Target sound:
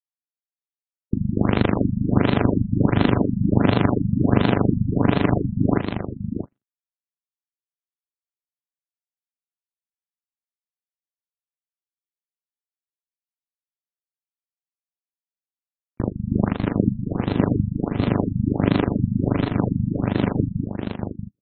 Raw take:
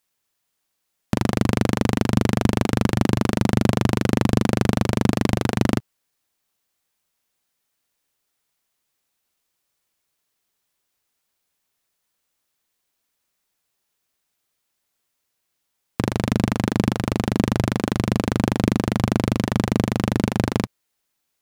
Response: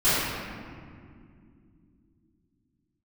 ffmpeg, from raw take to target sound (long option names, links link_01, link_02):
-filter_complex "[0:a]asplit=2[link_01][link_02];[link_02]aecho=0:1:75|150|157|211:0.141|0.168|0.282|0.106[link_03];[link_01][link_03]amix=inputs=2:normalize=0,asplit=3[link_04][link_05][link_06];[link_05]asetrate=37084,aresample=44100,atempo=1.18921,volume=-16dB[link_07];[link_06]asetrate=52444,aresample=44100,atempo=0.840896,volume=-9dB[link_08];[link_04][link_07][link_08]amix=inputs=3:normalize=0,highshelf=frequency=5400:gain=12,agate=range=-44dB:threshold=-20dB:ratio=16:detection=peak,asplit=2[link_09][link_10];[link_10]aecho=0:1:633:0.447[link_11];[link_09][link_11]amix=inputs=2:normalize=0,afftfilt=real='re*lt(b*sr/1024,220*pow(4300/220,0.5+0.5*sin(2*PI*1.4*pts/sr)))':imag='im*lt(b*sr/1024,220*pow(4300/220,0.5+0.5*sin(2*PI*1.4*pts/sr)))':win_size=1024:overlap=0.75,volume=1dB"